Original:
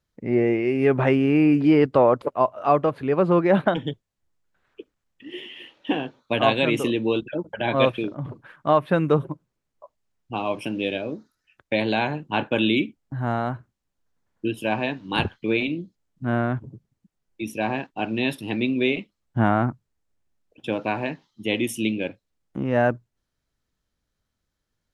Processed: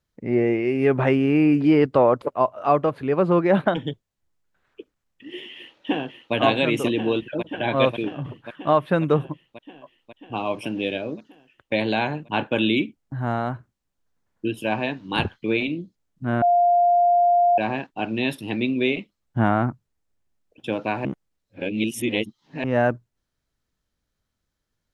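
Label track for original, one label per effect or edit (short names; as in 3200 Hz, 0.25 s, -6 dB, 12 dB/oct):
5.540000	6.340000	echo throw 0.54 s, feedback 75%, level -5 dB
16.420000	17.580000	bleep 701 Hz -14 dBFS
21.050000	22.640000	reverse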